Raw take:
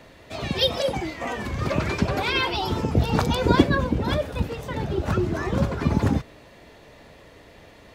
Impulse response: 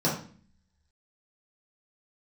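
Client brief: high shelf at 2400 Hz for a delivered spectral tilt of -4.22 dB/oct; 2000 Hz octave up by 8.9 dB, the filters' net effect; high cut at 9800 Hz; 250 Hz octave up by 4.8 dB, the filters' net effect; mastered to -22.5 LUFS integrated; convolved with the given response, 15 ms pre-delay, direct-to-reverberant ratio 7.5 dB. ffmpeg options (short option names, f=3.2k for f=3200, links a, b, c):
-filter_complex "[0:a]lowpass=9.8k,equalizer=f=250:t=o:g=6,equalizer=f=2k:t=o:g=7,highshelf=f=2.4k:g=8.5,asplit=2[a][b];[1:a]atrim=start_sample=2205,adelay=15[c];[b][c]afir=irnorm=-1:irlink=0,volume=-19.5dB[d];[a][d]amix=inputs=2:normalize=0,volume=-5dB"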